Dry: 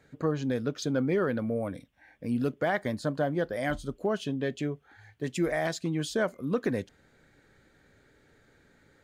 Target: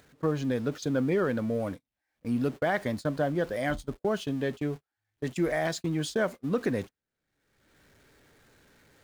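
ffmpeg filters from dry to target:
-af "aeval=exprs='val(0)+0.5*0.00708*sgn(val(0))':c=same,agate=range=-45dB:threshold=-34dB:ratio=16:detection=peak,acompressor=mode=upward:threshold=-39dB:ratio=2.5"

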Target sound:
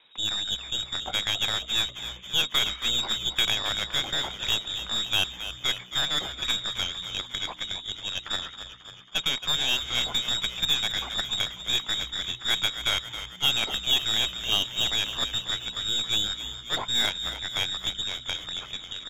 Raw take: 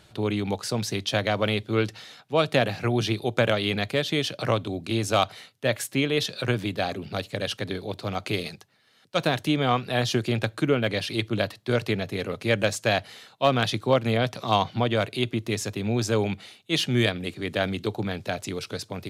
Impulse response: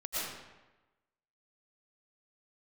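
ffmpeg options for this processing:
-filter_complex "[0:a]lowpass=f=3.3k:t=q:w=0.5098,lowpass=f=3.3k:t=q:w=0.6013,lowpass=f=3.3k:t=q:w=0.9,lowpass=f=3.3k:t=q:w=2.563,afreqshift=-3900,aeval=exprs='0.447*(cos(1*acos(clip(val(0)/0.447,-1,1)))-cos(1*PI/2))+0.0355*(cos(8*acos(clip(val(0)/0.447,-1,1)))-cos(8*PI/2))':c=same,asplit=8[a][b][c][d][e][f][g][h];[b]adelay=272,afreqshift=-62,volume=-11dB[i];[c]adelay=544,afreqshift=-124,volume=-15.4dB[j];[d]adelay=816,afreqshift=-186,volume=-19.9dB[k];[e]adelay=1088,afreqshift=-248,volume=-24.3dB[l];[f]adelay=1360,afreqshift=-310,volume=-28.7dB[m];[g]adelay=1632,afreqshift=-372,volume=-33.2dB[n];[h]adelay=1904,afreqshift=-434,volume=-37.6dB[o];[a][i][j][k][l][m][n][o]amix=inputs=8:normalize=0,volume=-3.5dB"

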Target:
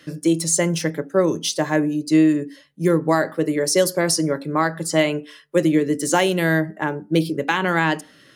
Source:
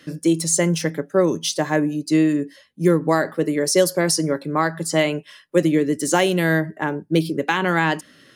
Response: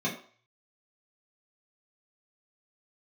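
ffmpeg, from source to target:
-filter_complex "[0:a]asplit=2[a][b];[1:a]atrim=start_sample=2205,asetrate=52920,aresample=44100,lowpass=1.3k[c];[b][c]afir=irnorm=-1:irlink=0,volume=-21.5dB[d];[a][d]amix=inputs=2:normalize=0"

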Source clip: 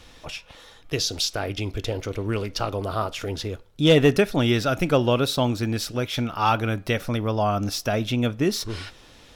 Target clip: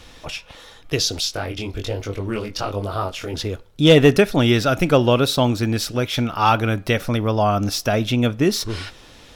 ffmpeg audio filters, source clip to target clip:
-filter_complex "[0:a]asettb=1/sr,asplit=3[a][b][c];[a]atrim=end=1.204[d];[b]atrim=start=1.2:end=3.34,asetpts=PTS-STARTPTS,afade=t=in:d=0.004:c=qsin,afade=t=out:st=2.136:d=0.004:c=qsin,flanger=delay=19.5:depth=4.1:speed=1.2[e];[c]atrim=start=3.336[f];[d][e]acrossfade=d=0.004:c1=hsin:c2=qsin[g];[g][f]acrossfade=d=0.004:c1=qsin:c2=hsin,volume=4.5dB"

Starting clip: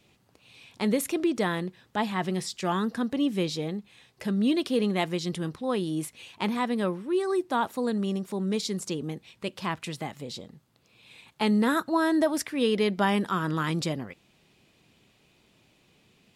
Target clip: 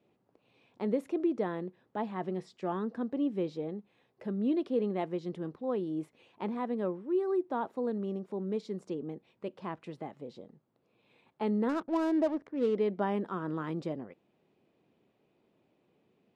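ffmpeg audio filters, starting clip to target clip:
-filter_complex "[0:a]bandpass=f=430:t=q:w=0.85:csg=0,asettb=1/sr,asplit=3[a][b][c];[a]atrim=end=11.694[d];[b]atrim=start=11.69:end=12.76,asetpts=PTS-STARTPTS,afade=t=in:d=0.004:c=qsin,afade=t=out:st=1.066:d=0.004:c=qsin,adynamicsmooth=sensitivity=7.5:basefreq=590[e];[c]atrim=start=12.756[f];[d][e]acrossfade=d=0.004:c1=hsin:c2=qsin[g];[g][f]acrossfade=d=0.004:c1=qsin:c2=hsin,volume=-3dB"

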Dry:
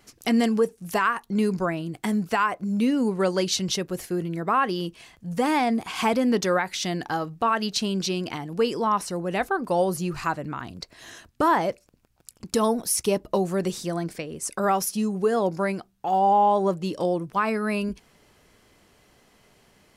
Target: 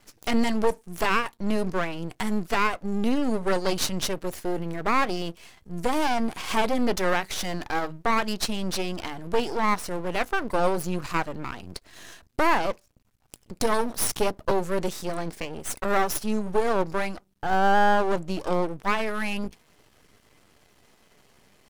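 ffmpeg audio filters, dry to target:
-af "aeval=exprs='max(val(0),0)':c=same,atempo=0.92,volume=3dB"

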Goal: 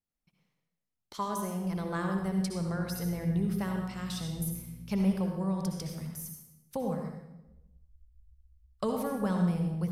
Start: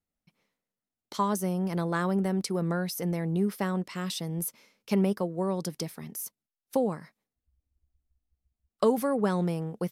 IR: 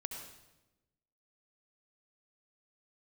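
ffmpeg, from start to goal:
-filter_complex "[0:a]asubboost=boost=11.5:cutoff=93,asettb=1/sr,asplit=3[a][b][c];[a]atrim=end=2.554[d];[b]atrim=start=2.55:end=4.96,asetpts=PTS-STARTPTS,afade=t=in:d=0.004:c=qsin,afade=t=out:st=2.406:d=0.004:c=qsin,aeval=exprs='val(0)+0.00562*(sin(2*PI*60*n/s)+sin(2*PI*2*60*n/s)/2+sin(2*PI*3*60*n/s)/3+sin(2*PI*4*60*n/s)/4+sin(2*PI*5*60*n/s)/5)':c=same[e];[c]atrim=start=4.956[f];[d][e]acrossfade=d=0.004:c1=hsin:c2=qsin[g];[g][f]acrossfade=d=0.004:c1=qsin:c2=hsin[h];[1:a]atrim=start_sample=2205,asetrate=48510,aresample=44100[i];[h][i]afir=irnorm=-1:irlink=0,volume=-2dB"

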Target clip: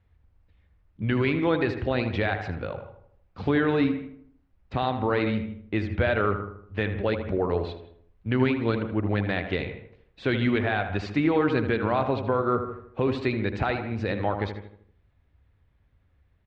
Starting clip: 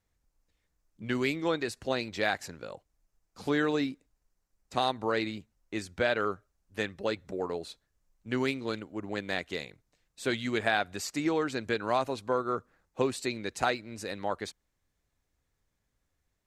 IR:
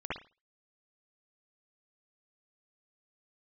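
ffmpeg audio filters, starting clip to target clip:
-filter_complex "[0:a]lowpass=f=3.3k:w=0.5412,lowpass=f=3.3k:w=1.3066,equalizer=f=79:w=0.95:g=13.5,alimiter=limit=-21.5dB:level=0:latency=1:release=133,asplit=2[a][b];[b]adelay=78,lowpass=f=1.8k:p=1,volume=-8dB,asplit=2[c][d];[d]adelay=78,lowpass=f=1.8k:p=1,volume=0.49,asplit=2[e][f];[f]adelay=78,lowpass=f=1.8k:p=1,volume=0.49,asplit=2[g][h];[h]adelay=78,lowpass=f=1.8k:p=1,volume=0.49,asplit=2[i][j];[j]adelay=78,lowpass=f=1.8k:p=1,volume=0.49,asplit=2[k][l];[l]adelay=78,lowpass=f=1.8k:p=1,volume=0.49[m];[a][c][e][g][i][k][m]amix=inputs=7:normalize=0,asplit=2[n][o];[1:a]atrim=start_sample=2205,adelay=82[p];[o][p]afir=irnorm=-1:irlink=0,volume=-18.5dB[q];[n][q]amix=inputs=2:normalize=0,volume=7.5dB"

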